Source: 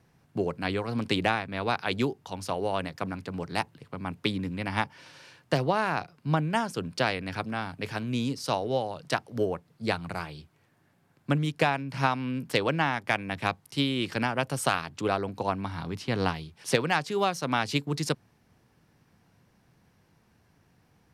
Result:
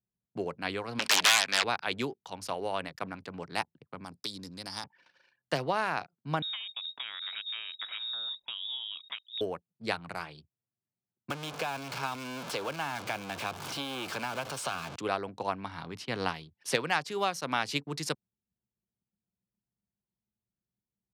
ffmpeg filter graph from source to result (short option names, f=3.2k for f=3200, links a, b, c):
-filter_complex "[0:a]asettb=1/sr,asplit=3[a][b][c];[a]atrim=end=0.994[d];[b]atrim=start=0.99:end=1.64,asetpts=PTS-STARTPTS,afade=t=in:d=0.004:c=qsin,afade=t=out:st=0.646:d=0.004:c=qsin,aeval=exprs='0.316*sin(PI/2*7.94*val(0)/0.316)':c=same,bandpass=f=4.3k:t=q:w=0.63[e];[c]atrim=start=1.636[f];[d][e]acrossfade=d=0.004:c1=hsin:c2=qsin[g];[g][f]acrossfade=d=0.004:c1=qsin:c2=hsin,asettb=1/sr,asplit=3[h][i][j];[h]atrim=end=4.044[k];[i]atrim=start=4.04:end=4.84,asetpts=PTS-STARTPTS,afade=t=in:d=0.004:c=qsin,afade=t=out:st=0.796:d=0.004:c=qsin,highshelf=f=3.5k:t=q:w=3:g=12.5,acompressor=threshold=-37dB:ratio=2:attack=3.2:release=140:knee=1:detection=peak[l];[j]atrim=start=4.836[m];[k][l]acrossfade=d=0.004:c1=hsin:c2=qsin[n];[n][m]acrossfade=d=0.004:c1=qsin:c2=hsin,asettb=1/sr,asplit=3[o][p][q];[o]atrim=end=6.424[r];[p]atrim=start=6.42:end=9.41,asetpts=PTS-STARTPTS,afade=t=in:d=0.004:c=qsin,afade=t=out:st=2.986:d=0.004:c=qsin,acompressor=threshold=-31dB:ratio=12:attack=3.2:release=140:knee=1:detection=peak,lowpass=f=3.3k:t=q:w=0.5098,lowpass=f=3.3k:t=q:w=0.6013,lowpass=f=3.3k:t=q:w=0.9,lowpass=f=3.3k:t=q:w=2.563,afreqshift=-3900[s];[q]atrim=start=9.406[t];[r][s]acrossfade=d=0.004:c1=hsin:c2=qsin[u];[u][t]acrossfade=d=0.004:c1=qsin:c2=hsin,asettb=1/sr,asplit=3[v][w][x];[v]atrim=end=11.304[y];[w]atrim=start=11.3:end=14.96,asetpts=PTS-STARTPTS,afade=t=in:d=0.004:c=qsin,afade=t=out:st=3.656:d=0.004:c=qsin,aeval=exprs='val(0)+0.5*0.0562*sgn(val(0))':c=same,bandreject=f=1.9k:w=5.3,acrossover=split=480|1600|7100[z][aa][ab][ac];[z]acompressor=threshold=-38dB:ratio=3[ad];[aa]acompressor=threshold=-33dB:ratio=3[ae];[ab]acompressor=threshold=-38dB:ratio=3[af];[ac]acompressor=threshold=-53dB:ratio=3[ag];[ad][ae][af][ag]amix=inputs=4:normalize=0[ah];[x]atrim=start=14.956[ai];[y][ah]acrossfade=d=0.004:c1=hsin:c2=qsin[aj];[aj][ai]acrossfade=d=0.004:c1=qsin:c2=hsin,anlmdn=0.0251,highpass=91,lowshelf=f=420:g=-8,volume=-1.5dB"